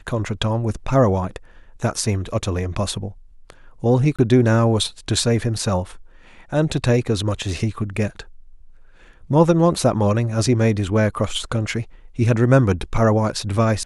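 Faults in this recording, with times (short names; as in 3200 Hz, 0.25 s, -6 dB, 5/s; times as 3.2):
4.16–4.19 gap 26 ms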